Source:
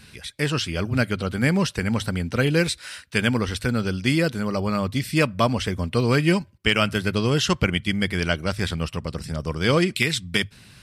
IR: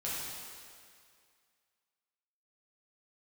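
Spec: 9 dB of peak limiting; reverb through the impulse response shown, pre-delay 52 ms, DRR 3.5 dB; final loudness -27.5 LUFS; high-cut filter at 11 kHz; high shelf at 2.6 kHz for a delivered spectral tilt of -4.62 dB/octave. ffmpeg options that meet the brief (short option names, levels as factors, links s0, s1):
-filter_complex "[0:a]lowpass=11000,highshelf=f=2600:g=6,alimiter=limit=0.282:level=0:latency=1,asplit=2[s0][s1];[1:a]atrim=start_sample=2205,adelay=52[s2];[s1][s2]afir=irnorm=-1:irlink=0,volume=0.422[s3];[s0][s3]amix=inputs=2:normalize=0,volume=0.531"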